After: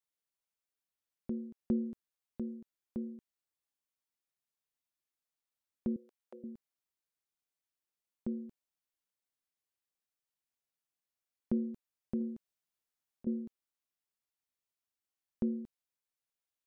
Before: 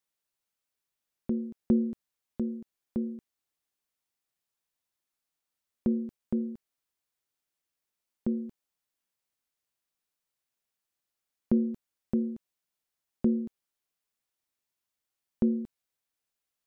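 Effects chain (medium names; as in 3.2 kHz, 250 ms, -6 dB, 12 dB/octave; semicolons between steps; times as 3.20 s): 5.96–6.44 s: high-pass 460 Hz 24 dB/octave; 12.20–13.27 s: compressor with a negative ratio -29 dBFS, ratio -0.5; trim -7.5 dB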